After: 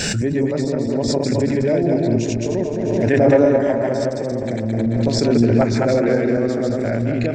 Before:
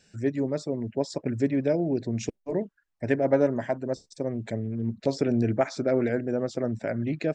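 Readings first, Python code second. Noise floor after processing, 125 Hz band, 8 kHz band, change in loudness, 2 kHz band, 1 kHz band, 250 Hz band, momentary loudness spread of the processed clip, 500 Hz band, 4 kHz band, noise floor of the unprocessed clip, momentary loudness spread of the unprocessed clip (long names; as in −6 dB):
−23 dBFS, +11.0 dB, +14.0 dB, +9.5 dB, +10.0 dB, +9.0 dB, +9.5 dB, 7 LU, +9.5 dB, +14.5 dB, −75 dBFS, 8 LU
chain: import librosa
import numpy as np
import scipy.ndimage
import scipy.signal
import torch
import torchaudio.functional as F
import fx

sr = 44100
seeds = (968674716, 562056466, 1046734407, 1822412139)

y = fx.reverse_delay_fb(x, sr, ms=108, feedback_pct=60, wet_db=0)
y = fx.echo_wet_lowpass(y, sr, ms=363, feedback_pct=58, hz=3900.0, wet_db=-14.0)
y = fx.pre_swell(y, sr, db_per_s=21.0)
y = y * 10.0 ** (3.5 / 20.0)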